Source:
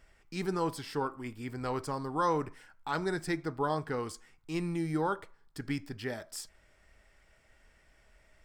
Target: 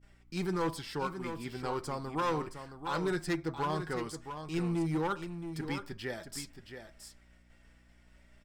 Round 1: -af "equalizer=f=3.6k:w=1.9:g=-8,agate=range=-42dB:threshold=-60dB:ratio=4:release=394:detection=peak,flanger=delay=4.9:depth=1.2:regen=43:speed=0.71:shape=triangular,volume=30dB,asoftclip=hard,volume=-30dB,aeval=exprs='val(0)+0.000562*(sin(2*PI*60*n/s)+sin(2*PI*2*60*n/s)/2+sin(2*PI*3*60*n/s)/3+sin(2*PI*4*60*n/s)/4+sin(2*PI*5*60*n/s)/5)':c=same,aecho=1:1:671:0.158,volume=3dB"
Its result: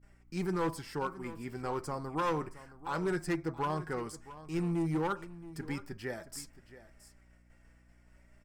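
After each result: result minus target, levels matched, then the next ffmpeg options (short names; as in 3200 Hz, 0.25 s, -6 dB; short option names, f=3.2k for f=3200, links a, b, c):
4000 Hz band -5.0 dB; echo-to-direct -7 dB
-af "equalizer=f=3.6k:w=1.9:g=3,agate=range=-42dB:threshold=-60dB:ratio=4:release=394:detection=peak,flanger=delay=4.9:depth=1.2:regen=43:speed=0.71:shape=triangular,volume=30dB,asoftclip=hard,volume=-30dB,aeval=exprs='val(0)+0.000562*(sin(2*PI*60*n/s)+sin(2*PI*2*60*n/s)/2+sin(2*PI*3*60*n/s)/3+sin(2*PI*4*60*n/s)/4+sin(2*PI*5*60*n/s)/5)':c=same,aecho=1:1:671:0.158,volume=3dB"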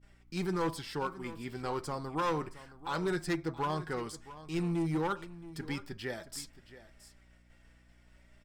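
echo-to-direct -7 dB
-af "equalizer=f=3.6k:w=1.9:g=3,agate=range=-42dB:threshold=-60dB:ratio=4:release=394:detection=peak,flanger=delay=4.9:depth=1.2:regen=43:speed=0.71:shape=triangular,volume=30dB,asoftclip=hard,volume=-30dB,aeval=exprs='val(0)+0.000562*(sin(2*PI*60*n/s)+sin(2*PI*2*60*n/s)/2+sin(2*PI*3*60*n/s)/3+sin(2*PI*4*60*n/s)/4+sin(2*PI*5*60*n/s)/5)':c=same,aecho=1:1:671:0.355,volume=3dB"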